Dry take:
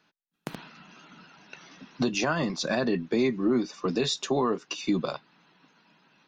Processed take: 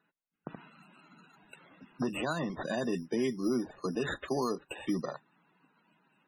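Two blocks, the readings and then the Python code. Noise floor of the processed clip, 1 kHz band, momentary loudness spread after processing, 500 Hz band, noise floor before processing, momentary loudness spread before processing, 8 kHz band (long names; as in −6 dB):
−84 dBFS, −6.0 dB, 17 LU, −6.0 dB, −80 dBFS, 16 LU, −10.5 dB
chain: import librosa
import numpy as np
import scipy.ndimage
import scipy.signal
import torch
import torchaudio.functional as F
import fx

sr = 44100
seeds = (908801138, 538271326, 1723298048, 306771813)

y = fx.sample_hold(x, sr, seeds[0], rate_hz=5400.0, jitter_pct=0)
y = fx.spec_topn(y, sr, count=64)
y = y * librosa.db_to_amplitude(-6.0)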